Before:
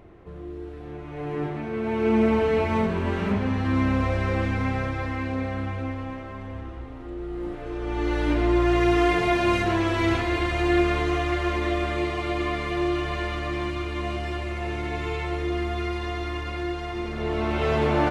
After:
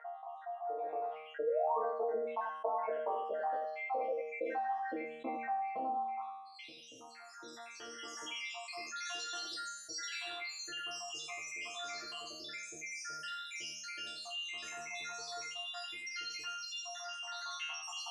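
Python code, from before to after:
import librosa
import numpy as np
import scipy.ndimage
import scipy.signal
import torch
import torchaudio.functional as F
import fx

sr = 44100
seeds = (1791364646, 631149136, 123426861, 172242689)

p1 = fx.spec_dropout(x, sr, seeds[0], share_pct=85)
p2 = fx.low_shelf(p1, sr, hz=120.0, db=-10.5)
p3 = fx.rider(p2, sr, range_db=5, speed_s=0.5)
p4 = p2 + (p3 * 10.0 ** (-2.0 / 20.0))
p5 = fx.filter_sweep_bandpass(p4, sr, from_hz=720.0, to_hz=5800.0, start_s=6.11, end_s=6.75, q=2.6)
p6 = fx.spec_paint(p5, sr, seeds[1], shape='rise', start_s=1.42, length_s=0.37, low_hz=410.0, high_hz=1200.0, level_db=-35.0)
p7 = fx.resonator_bank(p6, sr, root=51, chord='fifth', decay_s=0.59)
p8 = fx.filter_sweep_highpass(p7, sr, from_hz=550.0, to_hz=80.0, start_s=3.87, end_s=7.78, q=2.8)
p9 = p8 + fx.echo_single(p8, sr, ms=85, db=-9.0, dry=0)
p10 = fx.env_flatten(p9, sr, amount_pct=50)
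y = p10 * 10.0 ** (12.5 / 20.0)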